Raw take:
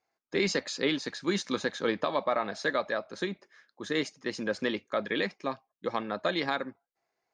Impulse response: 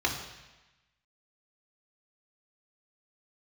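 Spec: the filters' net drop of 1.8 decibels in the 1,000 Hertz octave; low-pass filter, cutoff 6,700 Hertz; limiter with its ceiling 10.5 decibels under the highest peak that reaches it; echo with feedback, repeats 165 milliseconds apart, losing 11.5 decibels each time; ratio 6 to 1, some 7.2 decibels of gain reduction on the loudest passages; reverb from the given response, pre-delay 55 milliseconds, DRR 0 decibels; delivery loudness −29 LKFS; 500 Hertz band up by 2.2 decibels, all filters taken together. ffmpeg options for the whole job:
-filter_complex "[0:a]lowpass=6700,equalizer=frequency=500:width_type=o:gain=3.5,equalizer=frequency=1000:width_type=o:gain=-3.5,acompressor=threshold=-30dB:ratio=6,alimiter=level_in=4dB:limit=-24dB:level=0:latency=1,volume=-4dB,aecho=1:1:165|330|495:0.266|0.0718|0.0194,asplit=2[link_01][link_02];[1:a]atrim=start_sample=2205,adelay=55[link_03];[link_02][link_03]afir=irnorm=-1:irlink=0,volume=-10.5dB[link_04];[link_01][link_04]amix=inputs=2:normalize=0,volume=8dB"

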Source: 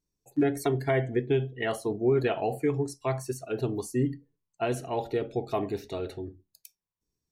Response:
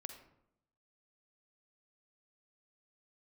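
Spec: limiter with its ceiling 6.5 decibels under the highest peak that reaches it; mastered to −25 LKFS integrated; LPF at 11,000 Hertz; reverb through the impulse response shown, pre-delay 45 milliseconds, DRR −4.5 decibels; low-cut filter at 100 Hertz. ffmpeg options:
-filter_complex "[0:a]highpass=100,lowpass=11000,alimiter=limit=-20.5dB:level=0:latency=1,asplit=2[link_01][link_02];[1:a]atrim=start_sample=2205,adelay=45[link_03];[link_02][link_03]afir=irnorm=-1:irlink=0,volume=8.5dB[link_04];[link_01][link_04]amix=inputs=2:normalize=0,volume=1dB"

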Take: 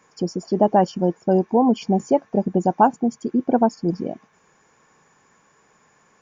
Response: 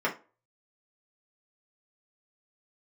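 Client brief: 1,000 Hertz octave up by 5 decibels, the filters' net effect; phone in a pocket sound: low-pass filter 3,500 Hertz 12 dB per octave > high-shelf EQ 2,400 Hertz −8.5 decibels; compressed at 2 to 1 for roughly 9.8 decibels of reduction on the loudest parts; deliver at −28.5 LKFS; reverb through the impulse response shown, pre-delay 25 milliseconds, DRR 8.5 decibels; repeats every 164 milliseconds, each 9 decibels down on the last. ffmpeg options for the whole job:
-filter_complex "[0:a]equalizer=frequency=1000:width_type=o:gain=8,acompressor=threshold=-22dB:ratio=2,aecho=1:1:164|328|492|656:0.355|0.124|0.0435|0.0152,asplit=2[link_01][link_02];[1:a]atrim=start_sample=2205,adelay=25[link_03];[link_02][link_03]afir=irnorm=-1:irlink=0,volume=-19.5dB[link_04];[link_01][link_04]amix=inputs=2:normalize=0,lowpass=3500,highshelf=frequency=2400:gain=-8.5,volume=-5dB"

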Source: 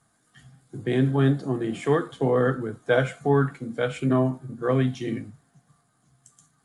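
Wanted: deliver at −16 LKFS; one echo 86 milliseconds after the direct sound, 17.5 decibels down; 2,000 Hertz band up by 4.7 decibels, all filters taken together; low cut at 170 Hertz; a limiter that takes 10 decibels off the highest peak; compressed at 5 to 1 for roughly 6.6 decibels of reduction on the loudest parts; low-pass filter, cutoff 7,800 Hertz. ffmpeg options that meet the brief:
ffmpeg -i in.wav -af "highpass=170,lowpass=7800,equalizer=frequency=2000:width_type=o:gain=6.5,acompressor=threshold=-23dB:ratio=5,alimiter=limit=-23dB:level=0:latency=1,aecho=1:1:86:0.133,volume=17dB" out.wav

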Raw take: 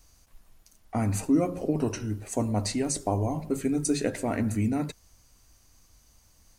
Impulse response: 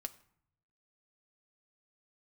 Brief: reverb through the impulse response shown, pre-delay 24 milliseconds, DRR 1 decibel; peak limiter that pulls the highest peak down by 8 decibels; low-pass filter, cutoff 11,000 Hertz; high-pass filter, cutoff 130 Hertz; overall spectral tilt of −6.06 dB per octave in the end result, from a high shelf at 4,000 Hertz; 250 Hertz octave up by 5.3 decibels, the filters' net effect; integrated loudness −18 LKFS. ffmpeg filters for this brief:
-filter_complex "[0:a]highpass=130,lowpass=11000,equalizer=frequency=250:width_type=o:gain=6.5,highshelf=frequency=4000:gain=-4.5,alimiter=limit=-16.5dB:level=0:latency=1,asplit=2[link_01][link_02];[1:a]atrim=start_sample=2205,adelay=24[link_03];[link_02][link_03]afir=irnorm=-1:irlink=0,volume=1.5dB[link_04];[link_01][link_04]amix=inputs=2:normalize=0,volume=7dB"

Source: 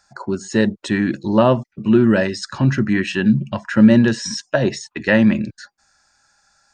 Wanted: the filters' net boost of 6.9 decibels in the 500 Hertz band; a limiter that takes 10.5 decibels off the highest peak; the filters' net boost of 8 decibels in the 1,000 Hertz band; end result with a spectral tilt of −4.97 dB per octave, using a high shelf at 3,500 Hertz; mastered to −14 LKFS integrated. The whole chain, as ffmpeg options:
ffmpeg -i in.wav -af "equalizer=frequency=500:width_type=o:gain=6.5,equalizer=frequency=1000:width_type=o:gain=8.5,highshelf=frequency=3500:gain=-7,volume=3.5dB,alimiter=limit=-2dB:level=0:latency=1" out.wav

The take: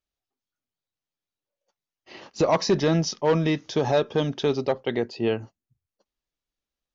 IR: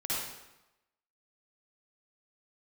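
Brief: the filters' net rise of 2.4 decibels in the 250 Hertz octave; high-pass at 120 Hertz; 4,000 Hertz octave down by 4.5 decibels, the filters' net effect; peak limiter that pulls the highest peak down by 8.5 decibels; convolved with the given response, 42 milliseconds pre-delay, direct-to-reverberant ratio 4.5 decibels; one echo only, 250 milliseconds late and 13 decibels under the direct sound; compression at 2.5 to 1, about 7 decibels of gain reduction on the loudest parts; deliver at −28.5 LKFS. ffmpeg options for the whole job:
-filter_complex "[0:a]highpass=120,equalizer=frequency=250:width_type=o:gain=4,equalizer=frequency=4000:width_type=o:gain=-6,acompressor=threshold=-26dB:ratio=2.5,alimiter=limit=-22dB:level=0:latency=1,aecho=1:1:250:0.224,asplit=2[link_01][link_02];[1:a]atrim=start_sample=2205,adelay=42[link_03];[link_02][link_03]afir=irnorm=-1:irlink=0,volume=-10.5dB[link_04];[link_01][link_04]amix=inputs=2:normalize=0,volume=2.5dB"

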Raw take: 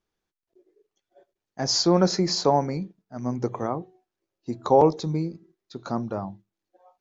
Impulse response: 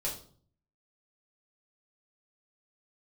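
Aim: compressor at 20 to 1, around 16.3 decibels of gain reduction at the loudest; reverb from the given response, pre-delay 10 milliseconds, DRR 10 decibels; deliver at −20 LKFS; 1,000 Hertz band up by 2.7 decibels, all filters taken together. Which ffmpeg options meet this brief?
-filter_complex "[0:a]equalizer=frequency=1000:width_type=o:gain=3.5,acompressor=threshold=-26dB:ratio=20,asplit=2[link_01][link_02];[1:a]atrim=start_sample=2205,adelay=10[link_03];[link_02][link_03]afir=irnorm=-1:irlink=0,volume=-13dB[link_04];[link_01][link_04]amix=inputs=2:normalize=0,volume=12.5dB"

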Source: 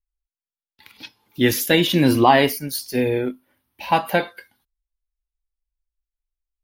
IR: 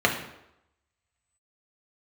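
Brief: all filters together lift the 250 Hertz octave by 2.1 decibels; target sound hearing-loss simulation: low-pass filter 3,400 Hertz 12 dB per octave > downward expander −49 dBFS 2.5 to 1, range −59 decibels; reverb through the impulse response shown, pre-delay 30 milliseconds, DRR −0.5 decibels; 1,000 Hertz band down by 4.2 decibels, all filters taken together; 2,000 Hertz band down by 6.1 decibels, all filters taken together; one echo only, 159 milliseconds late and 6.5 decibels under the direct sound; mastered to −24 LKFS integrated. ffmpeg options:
-filter_complex "[0:a]equalizer=frequency=250:width_type=o:gain=3,equalizer=frequency=1000:width_type=o:gain=-5,equalizer=frequency=2000:width_type=o:gain=-5.5,aecho=1:1:159:0.473,asplit=2[link_01][link_02];[1:a]atrim=start_sample=2205,adelay=30[link_03];[link_02][link_03]afir=irnorm=-1:irlink=0,volume=-16dB[link_04];[link_01][link_04]amix=inputs=2:normalize=0,lowpass=3400,agate=range=-59dB:threshold=-49dB:ratio=2.5,volume=-7.5dB"

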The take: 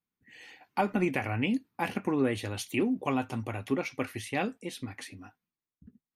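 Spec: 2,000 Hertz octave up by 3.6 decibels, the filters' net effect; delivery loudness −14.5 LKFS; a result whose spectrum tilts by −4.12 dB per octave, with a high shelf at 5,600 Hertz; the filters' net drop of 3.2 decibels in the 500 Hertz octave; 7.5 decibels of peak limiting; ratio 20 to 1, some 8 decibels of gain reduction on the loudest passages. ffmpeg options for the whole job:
ffmpeg -i in.wav -af "equalizer=frequency=500:width_type=o:gain=-4.5,equalizer=frequency=2000:width_type=o:gain=3.5,highshelf=frequency=5600:gain=8.5,acompressor=threshold=-31dB:ratio=20,volume=24dB,alimiter=limit=-1.5dB:level=0:latency=1" out.wav

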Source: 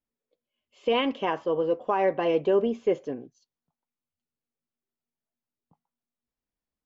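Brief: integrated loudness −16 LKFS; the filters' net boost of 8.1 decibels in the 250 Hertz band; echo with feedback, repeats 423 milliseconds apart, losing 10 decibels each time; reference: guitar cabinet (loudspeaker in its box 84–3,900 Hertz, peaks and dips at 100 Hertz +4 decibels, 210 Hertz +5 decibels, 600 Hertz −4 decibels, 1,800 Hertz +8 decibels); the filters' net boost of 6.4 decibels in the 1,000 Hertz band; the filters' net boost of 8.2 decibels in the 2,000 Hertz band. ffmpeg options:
ffmpeg -i in.wav -af "highpass=84,equalizer=frequency=100:width_type=q:width=4:gain=4,equalizer=frequency=210:width_type=q:width=4:gain=5,equalizer=frequency=600:width_type=q:width=4:gain=-4,equalizer=frequency=1800:width_type=q:width=4:gain=8,lowpass=frequency=3900:width=0.5412,lowpass=frequency=3900:width=1.3066,equalizer=frequency=250:width_type=o:gain=8,equalizer=frequency=1000:width_type=o:gain=7,equalizer=frequency=2000:width_type=o:gain=3,aecho=1:1:423|846|1269|1692:0.316|0.101|0.0324|0.0104,volume=6dB" out.wav

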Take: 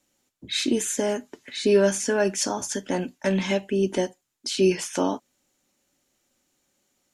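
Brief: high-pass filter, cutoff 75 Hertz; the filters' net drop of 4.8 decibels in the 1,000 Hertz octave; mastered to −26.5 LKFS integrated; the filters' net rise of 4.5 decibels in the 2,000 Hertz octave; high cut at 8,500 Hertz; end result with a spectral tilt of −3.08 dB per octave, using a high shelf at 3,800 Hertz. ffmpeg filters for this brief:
ffmpeg -i in.wav -af "highpass=75,lowpass=8500,equalizer=frequency=1000:width_type=o:gain=-8,equalizer=frequency=2000:width_type=o:gain=7,highshelf=frequency=3800:gain=4.5,volume=-2dB" out.wav

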